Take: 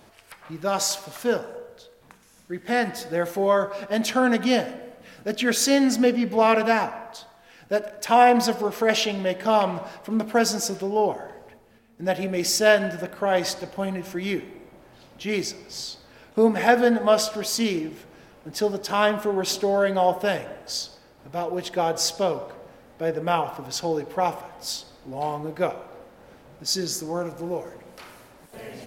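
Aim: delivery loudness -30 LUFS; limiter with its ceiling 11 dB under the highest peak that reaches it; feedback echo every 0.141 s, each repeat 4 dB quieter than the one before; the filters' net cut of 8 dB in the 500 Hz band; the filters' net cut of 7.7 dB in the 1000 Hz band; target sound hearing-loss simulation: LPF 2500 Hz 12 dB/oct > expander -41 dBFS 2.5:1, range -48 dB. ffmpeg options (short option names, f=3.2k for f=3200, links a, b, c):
-af "equalizer=f=500:t=o:g=-8,equalizer=f=1k:t=o:g=-7,alimiter=limit=-18.5dB:level=0:latency=1,lowpass=2.5k,aecho=1:1:141|282|423|564|705|846|987|1128|1269:0.631|0.398|0.25|0.158|0.0994|0.0626|0.0394|0.0249|0.0157,agate=range=-48dB:threshold=-41dB:ratio=2.5"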